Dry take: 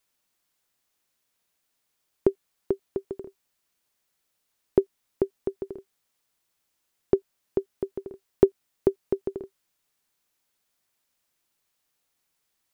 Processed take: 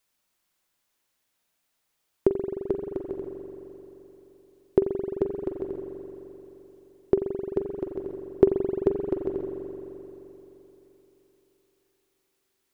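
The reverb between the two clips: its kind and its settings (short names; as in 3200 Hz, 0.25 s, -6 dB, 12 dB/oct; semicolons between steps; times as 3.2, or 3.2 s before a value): spring tank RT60 3.6 s, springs 43 ms, chirp 30 ms, DRR 3 dB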